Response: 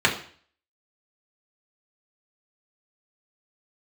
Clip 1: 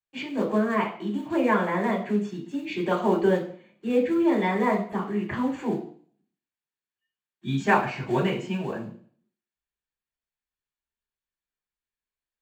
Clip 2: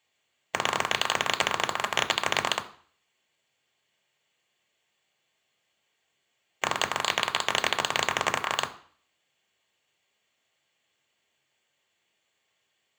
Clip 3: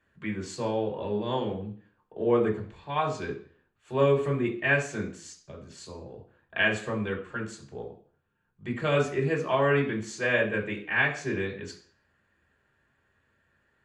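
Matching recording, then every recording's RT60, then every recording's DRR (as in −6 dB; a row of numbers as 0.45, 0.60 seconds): 3; 0.50, 0.50, 0.50 seconds; −7.5, 6.0, −3.5 decibels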